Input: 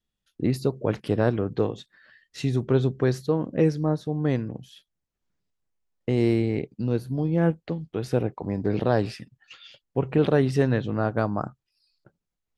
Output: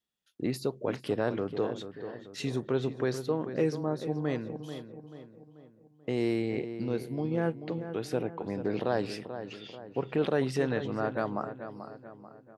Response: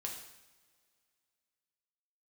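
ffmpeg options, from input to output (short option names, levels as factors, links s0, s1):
-filter_complex "[0:a]highpass=f=330:p=1,asplit=2[s0][s1];[s1]alimiter=limit=0.0891:level=0:latency=1:release=100,volume=0.891[s2];[s0][s2]amix=inputs=2:normalize=0,asplit=2[s3][s4];[s4]adelay=437,lowpass=f=2200:p=1,volume=0.316,asplit=2[s5][s6];[s6]adelay=437,lowpass=f=2200:p=1,volume=0.48,asplit=2[s7][s8];[s8]adelay=437,lowpass=f=2200:p=1,volume=0.48,asplit=2[s9][s10];[s10]adelay=437,lowpass=f=2200:p=1,volume=0.48,asplit=2[s11][s12];[s12]adelay=437,lowpass=f=2200:p=1,volume=0.48[s13];[s3][s5][s7][s9][s11][s13]amix=inputs=6:normalize=0,volume=0.447"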